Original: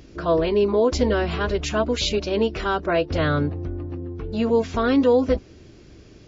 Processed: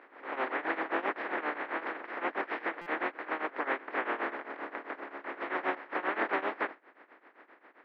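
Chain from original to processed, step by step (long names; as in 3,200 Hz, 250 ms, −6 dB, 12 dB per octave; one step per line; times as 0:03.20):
compressing power law on the bin magnitudes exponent 0.12
in parallel at −10 dB: bit reduction 4 bits
on the sum: downward compressor 2 to 1, threshold −24 dBFS, peak gain reduction 7.5 dB
shaped tremolo triangle 9.5 Hz, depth 90%
speed change −20%
elliptic band-pass filter 300–1,900 Hz, stop band 60 dB
on a send: backwards echo 160 ms −20 dB
on the sum: buffer that repeats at 0:02.81, samples 256, times 8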